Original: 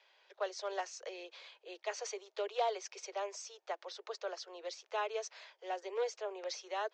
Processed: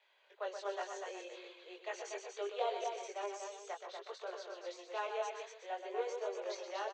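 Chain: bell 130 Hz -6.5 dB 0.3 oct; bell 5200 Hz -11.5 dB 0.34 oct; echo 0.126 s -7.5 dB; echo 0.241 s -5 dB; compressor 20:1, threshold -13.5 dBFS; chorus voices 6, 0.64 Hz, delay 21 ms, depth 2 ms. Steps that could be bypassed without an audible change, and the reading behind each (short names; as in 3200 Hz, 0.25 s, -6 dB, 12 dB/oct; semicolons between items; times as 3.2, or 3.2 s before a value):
bell 130 Hz: input band starts at 320 Hz; compressor, threshold -13.5 dBFS: input peak -22.0 dBFS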